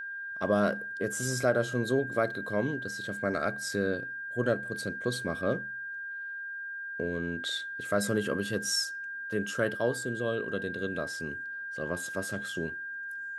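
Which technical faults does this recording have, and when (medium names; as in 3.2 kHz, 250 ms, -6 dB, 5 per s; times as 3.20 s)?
whine 1.6 kHz -36 dBFS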